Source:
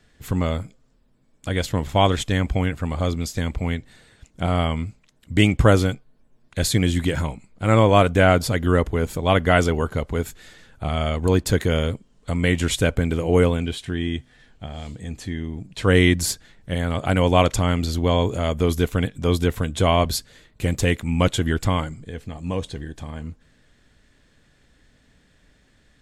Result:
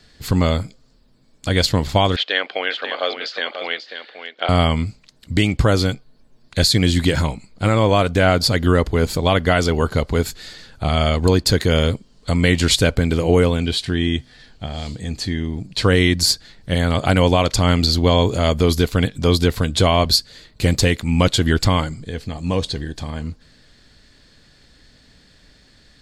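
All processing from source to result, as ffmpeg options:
ffmpeg -i in.wav -filter_complex "[0:a]asettb=1/sr,asplit=3[link_01][link_02][link_03];[link_01]atrim=end=2.164[link_04];[link_02]atrim=start=2.16:end=4.49,asetpts=PTS-STARTPTS,afade=type=in:duration=0.004:curve=qsin,afade=type=out:start_time=2.326:duration=0.004:curve=qsin,highpass=frequency=450:width=0.5412,highpass=frequency=450:width=1.3066,equalizer=frequency=950:width_type=q:width=4:gain=-5,equalizer=frequency=1600:width_type=q:width=4:gain=5,equalizer=frequency=3000:width_type=q:width=4:gain=6,lowpass=frequency=3800:width=0.5412,lowpass=frequency=3800:width=1.3066,aecho=1:1:539:0.355,atrim=end_sample=102753[link_05];[link_03]atrim=start=4.486[link_06];[link_04][link_05]acrossfade=duration=0.004:curve1=hsin:curve2=qsin[link_07];[link_07][link_06]acrossfade=duration=0.004:curve1=qsin:curve2=hsin,equalizer=frequency=4500:width_type=o:width=0.49:gain=13,alimiter=limit=-10dB:level=0:latency=1:release=335,volume=5.5dB" out.wav

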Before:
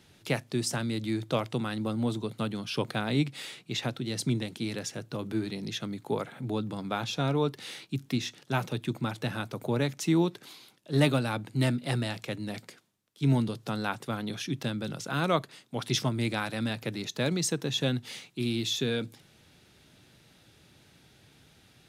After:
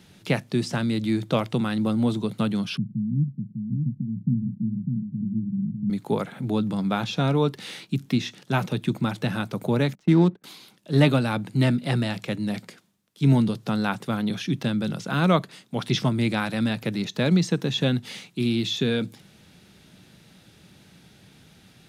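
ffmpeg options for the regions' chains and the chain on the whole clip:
ffmpeg -i in.wav -filter_complex "[0:a]asettb=1/sr,asplit=3[link_01][link_02][link_03];[link_01]atrim=end=2.774[link_04];[link_02]atrim=start=2.77:end=5.9,asetpts=PTS-STARTPTS,afade=type=in:duration=0.004:curve=qsin,afade=type=out:start_time=3.126:duration=0.004:curve=qsin,asuperpass=centerf=160:order=8:qfactor=1.2,aecho=1:1:600:0.596,atrim=end_sample=138033[link_05];[link_03]atrim=start=5.896[link_06];[link_04][link_05]acrossfade=duration=0.004:curve1=hsin:curve2=qsin[link_07];[link_07][link_06]acrossfade=duration=0.004:curve1=qsin:curve2=hsin,asettb=1/sr,asplit=3[link_08][link_09][link_10];[link_08]atrim=end=9.954[link_11];[link_09]atrim=start=9.95:end=10.44,asetpts=PTS-STARTPTS,afade=type=in:duration=0.004:curve=qsin,afade=type=out:start_time=0.486:duration=0.004:curve=qsin,adynamicsmooth=sensitivity=5.5:basefreq=1100,agate=range=-20dB:threshold=-44dB:ratio=16:release=100:detection=peak[link_12];[link_10]atrim=start=10.436[link_13];[link_11][link_12]acrossfade=duration=0.004:curve1=hsin:curve2=qsin[link_14];[link_14][link_13]acrossfade=duration=0.004:curve1=qsin:curve2=hsin,acrossover=split=4700[link_15][link_16];[link_16]acompressor=threshold=-48dB:ratio=4:attack=1:release=60[link_17];[link_15][link_17]amix=inputs=2:normalize=0,equalizer=frequency=190:width_type=o:width=0.43:gain=9,volume=4.5dB" out.wav

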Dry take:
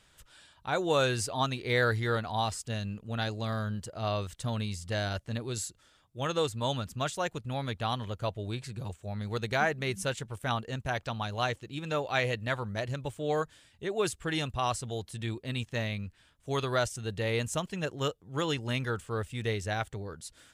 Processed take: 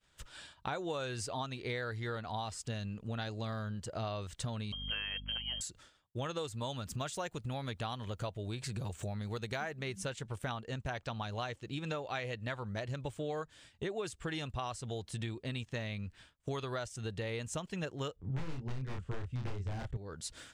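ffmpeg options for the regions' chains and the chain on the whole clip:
ffmpeg -i in.wav -filter_complex "[0:a]asettb=1/sr,asplit=3[link_01][link_02][link_03];[link_01]atrim=end=4.724[link_04];[link_02]atrim=start=4.72:end=5.61,asetpts=PTS-STARTPTS,afade=type=in:duration=0.004:curve=qsin,afade=type=out:start_time=0.886:duration=0.004:curve=qsin,lowpass=frequency=2800:width_type=q:width=0.5098,lowpass=frequency=2800:width_type=q:width=0.6013,lowpass=frequency=2800:width_type=q:width=0.9,lowpass=frequency=2800:width_type=q:width=2.563,afreqshift=-3300,aeval=exprs='val(0)+0.00708*(sin(2*PI*50*n/s)+sin(2*PI*2*50*n/s)/2+sin(2*PI*3*50*n/s)/3+sin(2*PI*4*50*n/s)/4+sin(2*PI*5*50*n/s)/5)':channel_layout=same[link_05];[link_03]atrim=start=5.606[link_06];[link_04][link_05]acrossfade=duration=0.004:curve1=hsin:curve2=qsin[link_07];[link_07][link_06]acrossfade=duration=0.004:curve1=qsin:curve2=hsin,asettb=1/sr,asplit=3[link_08][link_09][link_10];[link_08]atrim=end=6.374[link_11];[link_09]atrim=start=6.37:end=9.81,asetpts=PTS-STARTPTS,afade=type=in:duration=0.004:curve=qsin,afade=type=out:start_time=3.436:duration=0.004:curve=qsin,acompressor=mode=upward:threshold=-33dB:ratio=2.5:attack=3.2:release=140:knee=2.83:detection=peak,highshelf=frequency=8900:gain=9[link_12];[link_10]atrim=start=9.806[link_13];[link_11][link_12]acrossfade=duration=0.004:curve1=hsin:curve2=qsin[link_14];[link_14][link_13]acrossfade=duration=0.004:curve1=qsin:curve2=hsin,asettb=1/sr,asplit=3[link_15][link_16][link_17];[link_15]atrim=end=18.164[link_18];[link_16]atrim=start=18.16:end=19.97,asetpts=PTS-STARTPTS,afade=type=in:duration=0.004:curve=qsin,afade=type=out:start_time=1.806:duration=0.004:curve=qsin,aeval=exprs='(mod(17.8*val(0)+1,2)-1)/17.8':channel_layout=same,aemphasis=mode=reproduction:type=riaa,asplit=2[link_19][link_20];[link_20]adelay=31,volume=-3.5dB[link_21];[link_19][link_21]amix=inputs=2:normalize=0,atrim=end_sample=79821[link_22];[link_17]atrim=start=19.966[link_23];[link_18][link_22]acrossfade=duration=0.004:curve1=hsin:curve2=qsin[link_24];[link_24][link_23]acrossfade=duration=0.004:curve1=qsin:curve2=hsin,agate=range=-33dB:threshold=-53dB:ratio=3:detection=peak,equalizer=frequency=12000:width=2.1:gain=-12,acompressor=threshold=-44dB:ratio=8,volume=8dB" out.wav

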